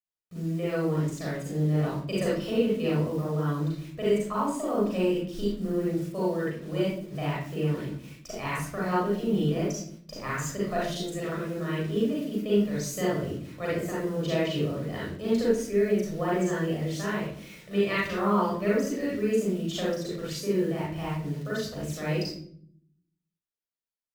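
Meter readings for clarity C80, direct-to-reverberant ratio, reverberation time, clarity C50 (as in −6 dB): 4.5 dB, −7.5 dB, 0.60 s, −3.0 dB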